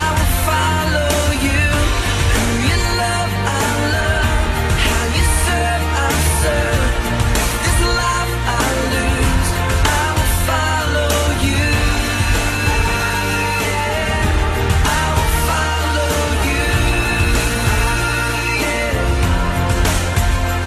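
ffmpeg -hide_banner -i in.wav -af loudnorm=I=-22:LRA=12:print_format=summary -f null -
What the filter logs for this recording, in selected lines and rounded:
Input Integrated:    -16.4 LUFS
Input True Peak:      -2.4 dBTP
Input LRA:             1.0 LU
Input Threshold:     -26.4 LUFS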